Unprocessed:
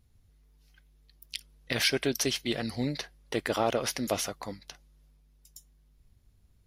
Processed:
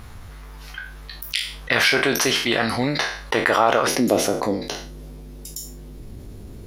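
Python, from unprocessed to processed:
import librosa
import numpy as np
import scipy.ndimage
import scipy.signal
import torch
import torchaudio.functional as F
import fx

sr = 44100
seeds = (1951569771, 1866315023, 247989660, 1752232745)

y = fx.spec_trails(x, sr, decay_s=0.32)
y = fx.peak_eq(y, sr, hz=fx.steps((0.0, 1200.0), (3.87, 350.0)), db=14.5, octaves=2.1)
y = fx.env_flatten(y, sr, amount_pct=50)
y = y * librosa.db_to_amplitude(-1.0)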